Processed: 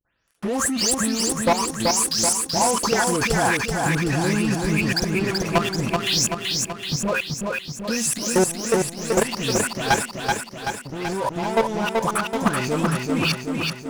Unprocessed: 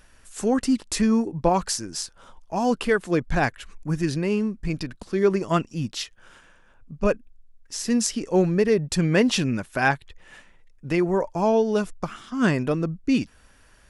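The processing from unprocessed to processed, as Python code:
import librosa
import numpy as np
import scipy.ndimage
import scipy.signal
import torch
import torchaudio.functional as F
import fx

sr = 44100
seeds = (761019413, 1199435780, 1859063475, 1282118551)

p1 = fx.spec_delay(x, sr, highs='late', ms=279)
p2 = scipy.signal.sosfilt(scipy.signal.butter(2, 59.0, 'highpass', fs=sr, output='sos'), p1)
p3 = fx.comb_fb(p2, sr, f0_hz=76.0, decay_s=0.23, harmonics='odd', damping=0.0, mix_pct=40)
p4 = fx.level_steps(p3, sr, step_db=22)
p5 = fx.high_shelf(p4, sr, hz=7100.0, db=9.5)
p6 = fx.rider(p5, sr, range_db=5, speed_s=0.5)
p7 = fx.dynamic_eq(p6, sr, hz=940.0, q=2.0, threshold_db=-53.0, ratio=4.0, max_db=8)
p8 = fx.leveller(p7, sr, passes=5)
p9 = p8 + fx.echo_feedback(p8, sr, ms=381, feedback_pct=60, wet_db=-3.5, dry=0)
y = p9 * librosa.db_to_amplitude(-1.5)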